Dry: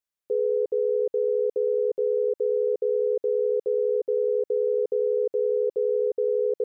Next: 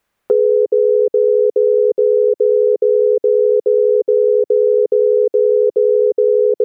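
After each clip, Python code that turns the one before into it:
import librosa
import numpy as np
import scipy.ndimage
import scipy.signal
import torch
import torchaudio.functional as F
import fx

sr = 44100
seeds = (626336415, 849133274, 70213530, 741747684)

y = fx.dynamic_eq(x, sr, hz=370.0, q=0.78, threshold_db=-38.0, ratio=4.0, max_db=7)
y = fx.band_squash(y, sr, depth_pct=70)
y = y * 10.0 ** (5.0 / 20.0)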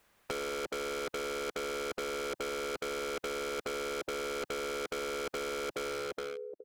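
y = fx.fade_out_tail(x, sr, length_s=0.84)
y = np.clip(10.0 ** (16.5 / 20.0) * y, -1.0, 1.0) / 10.0 ** (16.5 / 20.0)
y = fx.spectral_comp(y, sr, ratio=2.0)
y = y * 10.0 ** (-7.0 / 20.0)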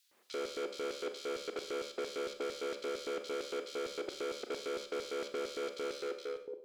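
y = fx.tube_stage(x, sr, drive_db=31.0, bias=0.2)
y = fx.filter_lfo_highpass(y, sr, shape='square', hz=4.4, low_hz=320.0, high_hz=4100.0, q=2.0)
y = fx.rev_schroeder(y, sr, rt60_s=0.52, comb_ms=30, drr_db=7.5)
y = y * 10.0 ** (-2.0 / 20.0)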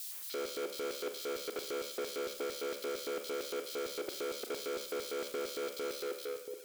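y = x + 0.5 * 10.0 ** (-39.0 / 20.0) * np.diff(np.sign(x), prepend=np.sign(x[:1]))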